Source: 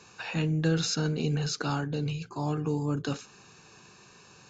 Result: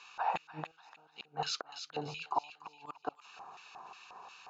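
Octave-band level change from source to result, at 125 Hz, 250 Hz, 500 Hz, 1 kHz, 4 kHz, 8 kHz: -24.0 dB, -21.5 dB, -11.0 dB, +2.5 dB, -7.0 dB, no reading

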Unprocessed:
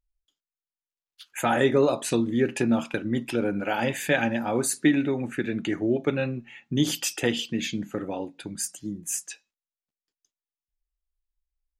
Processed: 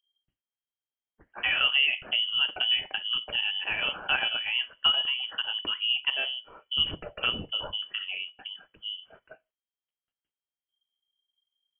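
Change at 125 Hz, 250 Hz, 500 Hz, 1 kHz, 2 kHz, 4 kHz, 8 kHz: -18.0 dB, -25.5 dB, -19.0 dB, -7.0 dB, +2.5 dB, +12.0 dB, under -40 dB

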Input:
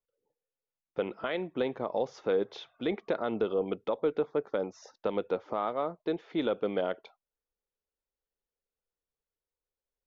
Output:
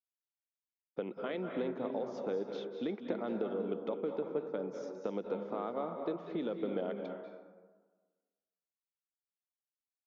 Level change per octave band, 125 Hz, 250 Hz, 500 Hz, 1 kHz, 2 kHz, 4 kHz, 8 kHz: -3.0 dB, -3.0 dB, -5.5 dB, -7.0 dB, -8.5 dB, -9.0 dB, no reading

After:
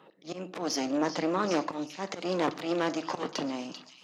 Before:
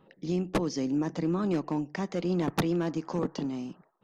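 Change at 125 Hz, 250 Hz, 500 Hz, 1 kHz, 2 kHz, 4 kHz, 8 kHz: -10.5 dB, -3.5 dB, +1.0 dB, +4.5 dB, +4.0 dB, +6.0 dB, +6.0 dB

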